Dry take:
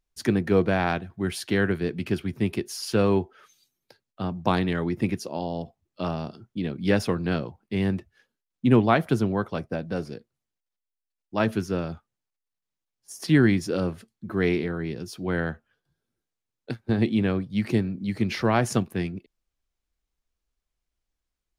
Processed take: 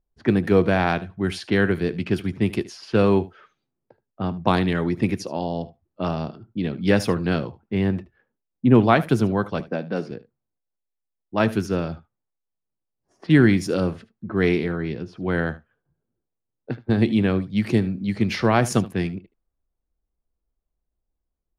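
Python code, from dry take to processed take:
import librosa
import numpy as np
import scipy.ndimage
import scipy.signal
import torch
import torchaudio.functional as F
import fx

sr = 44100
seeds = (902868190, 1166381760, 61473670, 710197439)

y = fx.highpass(x, sr, hz=160.0, slope=24, at=(9.6, 10.11))
y = fx.env_lowpass(y, sr, base_hz=760.0, full_db=-22.0)
y = fx.lowpass(y, sr, hz=fx.line((7.73, 2800.0), (8.74, 1300.0)), slope=6, at=(7.73, 8.74), fade=0.02)
y = y + 10.0 ** (-18.5 / 20.0) * np.pad(y, (int(75 * sr / 1000.0), 0))[:len(y)]
y = F.gain(torch.from_numpy(y), 3.5).numpy()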